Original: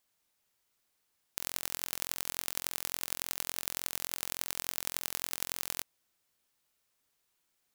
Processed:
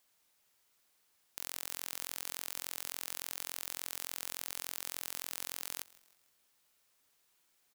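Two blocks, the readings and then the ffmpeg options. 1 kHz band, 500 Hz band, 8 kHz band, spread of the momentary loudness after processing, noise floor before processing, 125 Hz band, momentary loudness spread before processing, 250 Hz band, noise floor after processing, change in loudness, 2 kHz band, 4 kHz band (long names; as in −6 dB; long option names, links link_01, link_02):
−5.0 dB, −6.0 dB, −4.5 dB, 3 LU, −78 dBFS, −10.0 dB, 2 LU, −8.0 dB, −74 dBFS, −4.5 dB, −4.5 dB, −4.5 dB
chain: -filter_complex "[0:a]lowshelf=frequency=270:gain=-5,asoftclip=type=tanh:threshold=-17dB,asplit=2[link_01][link_02];[link_02]asplit=3[link_03][link_04][link_05];[link_03]adelay=156,afreqshift=-32,volume=-21.5dB[link_06];[link_04]adelay=312,afreqshift=-64,volume=-28.2dB[link_07];[link_05]adelay=468,afreqshift=-96,volume=-35dB[link_08];[link_06][link_07][link_08]amix=inputs=3:normalize=0[link_09];[link_01][link_09]amix=inputs=2:normalize=0,volume=4.5dB"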